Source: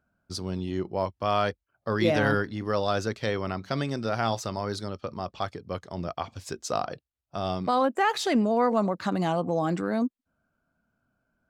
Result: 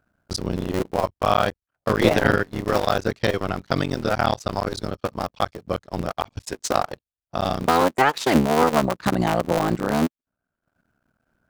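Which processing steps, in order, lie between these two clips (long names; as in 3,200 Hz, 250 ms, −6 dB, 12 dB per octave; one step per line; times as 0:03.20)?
sub-harmonics by changed cycles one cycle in 3, muted
transient designer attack +3 dB, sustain −12 dB
level +6.5 dB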